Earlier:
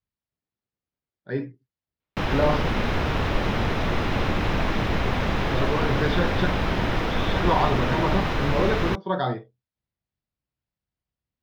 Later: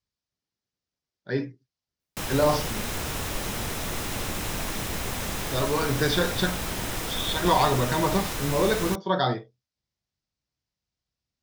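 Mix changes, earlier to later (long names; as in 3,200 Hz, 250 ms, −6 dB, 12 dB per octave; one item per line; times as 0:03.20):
background −9.0 dB
master: remove high-frequency loss of the air 300 metres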